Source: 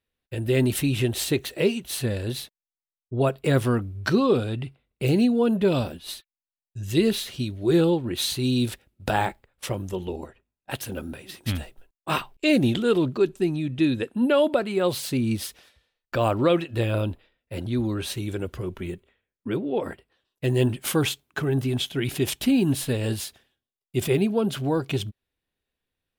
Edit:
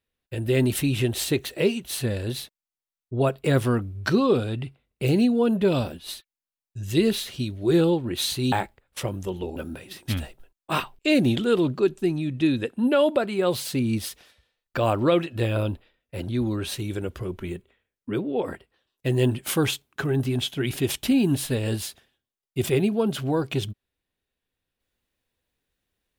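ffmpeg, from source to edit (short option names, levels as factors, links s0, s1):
-filter_complex "[0:a]asplit=3[s0][s1][s2];[s0]atrim=end=8.522[s3];[s1]atrim=start=9.178:end=10.222[s4];[s2]atrim=start=10.938[s5];[s3][s4]acrossfade=d=0.004:c1=hsin:c2=hsin[s6];[s6][s5]acrossfade=d=0.004:c1=hsin:c2=hsin"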